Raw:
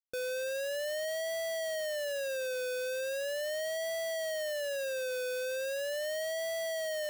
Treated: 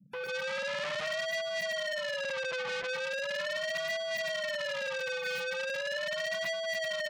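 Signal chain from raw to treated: 2.23–2.87 delta modulation 64 kbps, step -56 dBFS; small resonant body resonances 400/3100 Hz, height 9 dB, ringing for 35 ms; band noise 130–220 Hz -58 dBFS; 0.49–1.08 low shelf 330 Hz +12 dB; on a send: loudspeakers at several distances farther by 35 m -4 dB, 46 m -10 dB; on the sum: AGC gain up to 11.5 dB; in parallel at -7 dB: hard clip -21 dBFS, distortion -11 dB; on the sum: spectral gate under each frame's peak -30 dB strong; graphic EQ 2000/4000/8000 Hz +11/-6/-11 dB; limiter -18.5 dBFS, peak gain reduction 11 dB; core saturation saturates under 2300 Hz; gain -4.5 dB

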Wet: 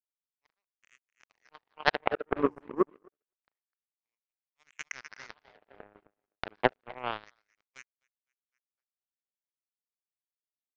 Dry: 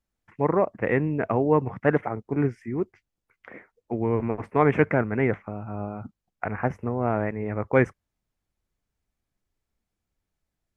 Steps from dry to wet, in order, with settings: split-band echo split 330 Hz, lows 0.114 s, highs 0.253 s, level -7.5 dB; LFO high-pass sine 0.28 Hz 320–3100 Hz; power-law curve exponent 3; gain +5.5 dB

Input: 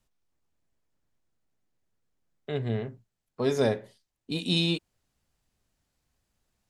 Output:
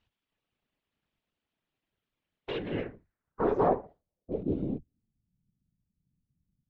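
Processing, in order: minimum comb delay 4.6 ms; whisperiser; low-pass sweep 3100 Hz -> 170 Hz, 2.58–5.23

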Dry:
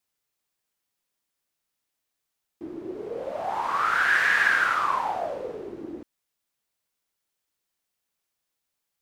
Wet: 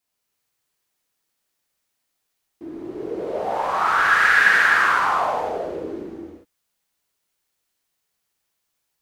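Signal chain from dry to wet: non-linear reverb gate 0.43 s flat, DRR -4.5 dB

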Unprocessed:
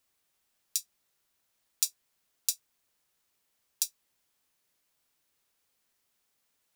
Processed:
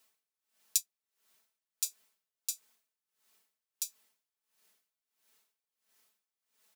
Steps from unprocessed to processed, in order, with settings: low shelf 170 Hz -11.5 dB; comb 4.6 ms; dB-linear tremolo 1.5 Hz, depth 25 dB; gain +5.5 dB

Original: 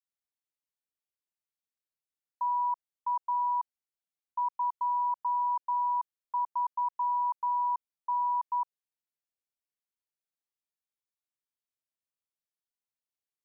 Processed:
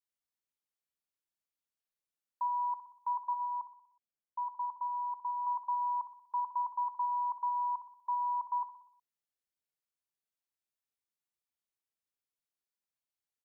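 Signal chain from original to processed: 3.33–5.47 LPF 1000 Hz 6 dB/oct; feedback echo 61 ms, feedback 55%, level -11.5 dB; gain -2.5 dB

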